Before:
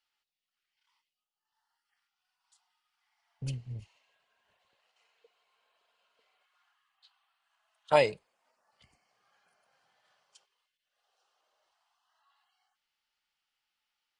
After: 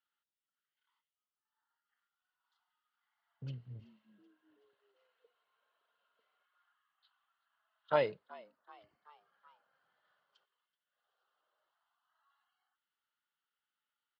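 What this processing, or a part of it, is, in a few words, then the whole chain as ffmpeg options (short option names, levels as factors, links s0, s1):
frequency-shifting delay pedal into a guitar cabinet: -filter_complex "[0:a]asplit=5[s0][s1][s2][s3][s4];[s1]adelay=379,afreqshift=96,volume=0.0841[s5];[s2]adelay=758,afreqshift=192,volume=0.0462[s6];[s3]adelay=1137,afreqshift=288,volume=0.0254[s7];[s4]adelay=1516,afreqshift=384,volume=0.014[s8];[s0][s5][s6][s7][s8]amix=inputs=5:normalize=0,highpass=110,equalizer=f=780:t=q:w=4:g=-5,equalizer=f=1400:t=q:w=4:g=6,equalizer=f=2400:t=q:w=4:g=-10,lowpass=f=3600:w=0.5412,lowpass=f=3600:w=1.3066,volume=0.531"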